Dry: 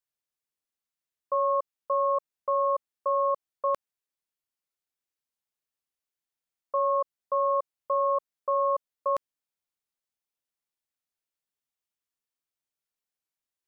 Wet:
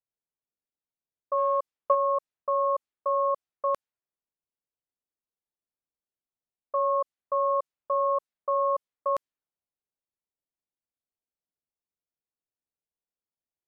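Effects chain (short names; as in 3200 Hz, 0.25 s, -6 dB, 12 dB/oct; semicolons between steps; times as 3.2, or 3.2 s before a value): low-pass opened by the level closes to 730 Hz, open at -24 dBFS; 1.37–1.95 transient shaper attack +7 dB, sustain +1 dB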